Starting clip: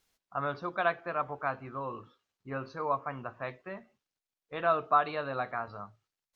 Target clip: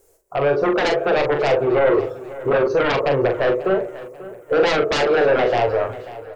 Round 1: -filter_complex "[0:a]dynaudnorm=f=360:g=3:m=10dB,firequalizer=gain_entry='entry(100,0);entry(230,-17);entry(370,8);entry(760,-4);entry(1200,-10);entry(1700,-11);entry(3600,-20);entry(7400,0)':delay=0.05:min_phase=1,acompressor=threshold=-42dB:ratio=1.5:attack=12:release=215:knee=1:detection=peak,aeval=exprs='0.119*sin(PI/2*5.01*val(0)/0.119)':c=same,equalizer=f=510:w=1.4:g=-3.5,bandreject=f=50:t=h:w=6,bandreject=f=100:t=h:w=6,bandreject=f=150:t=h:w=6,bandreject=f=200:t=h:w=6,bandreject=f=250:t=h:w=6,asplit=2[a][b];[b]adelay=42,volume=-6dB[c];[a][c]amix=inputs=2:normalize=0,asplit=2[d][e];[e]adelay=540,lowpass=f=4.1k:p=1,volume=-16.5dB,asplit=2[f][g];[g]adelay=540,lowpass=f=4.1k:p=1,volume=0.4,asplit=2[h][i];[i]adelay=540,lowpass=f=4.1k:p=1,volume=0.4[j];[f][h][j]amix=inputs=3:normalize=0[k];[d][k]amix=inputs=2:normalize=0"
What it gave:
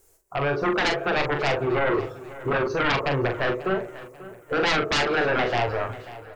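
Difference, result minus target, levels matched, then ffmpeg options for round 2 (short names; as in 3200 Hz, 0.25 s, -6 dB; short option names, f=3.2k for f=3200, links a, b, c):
500 Hz band -3.0 dB
-filter_complex "[0:a]dynaudnorm=f=360:g=3:m=10dB,firequalizer=gain_entry='entry(100,0);entry(230,-17);entry(370,8);entry(760,-4);entry(1200,-10);entry(1700,-11);entry(3600,-20);entry(7400,0)':delay=0.05:min_phase=1,acompressor=threshold=-42dB:ratio=1.5:attack=12:release=215:knee=1:detection=peak,aeval=exprs='0.119*sin(PI/2*5.01*val(0)/0.119)':c=same,equalizer=f=510:w=1.4:g=7,bandreject=f=50:t=h:w=6,bandreject=f=100:t=h:w=6,bandreject=f=150:t=h:w=6,bandreject=f=200:t=h:w=6,bandreject=f=250:t=h:w=6,asplit=2[a][b];[b]adelay=42,volume=-6dB[c];[a][c]amix=inputs=2:normalize=0,asplit=2[d][e];[e]adelay=540,lowpass=f=4.1k:p=1,volume=-16.5dB,asplit=2[f][g];[g]adelay=540,lowpass=f=4.1k:p=1,volume=0.4,asplit=2[h][i];[i]adelay=540,lowpass=f=4.1k:p=1,volume=0.4[j];[f][h][j]amix=inputs=3:normalize=0[k];[d][k]amix=inputs=2:normalize=0"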